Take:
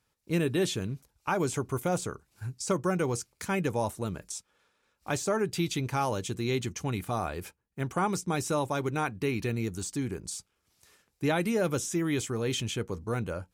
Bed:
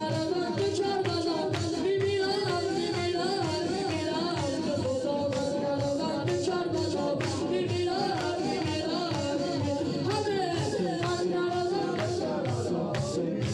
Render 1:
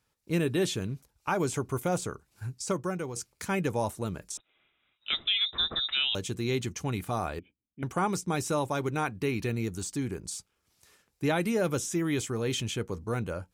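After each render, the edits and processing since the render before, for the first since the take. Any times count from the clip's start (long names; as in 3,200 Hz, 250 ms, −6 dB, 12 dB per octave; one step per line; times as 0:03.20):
0:02.54–0:03.16: fade out, to −9.5 dB
0:04.37–0:06.15: voice inversion scrambler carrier 3,800 Hz
0:07.39–0:07.83: formant resonators in series i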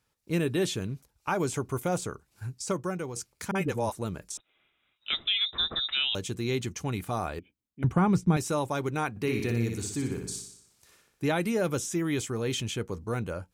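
0:03.51–0:03.92: all-pass dispersion highs, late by 44 ms, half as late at 440 Hz
0:07.84–0:08.37: bass and treble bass +13 dB, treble −10 dB
0:09.10–0:11.24: flutter between parallel walls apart 10.3 metres, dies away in 0.68 s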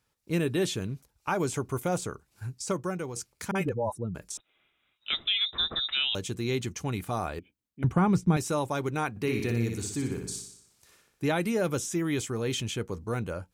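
0:03.69–0:04.15: expanding power law on the bin magnitudes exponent 2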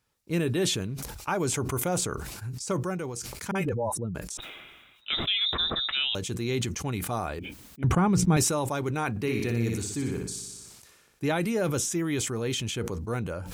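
level that may fall only so fast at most 37 dB per second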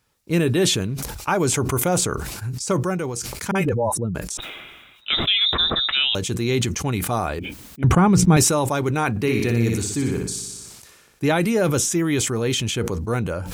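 level +7.5 dB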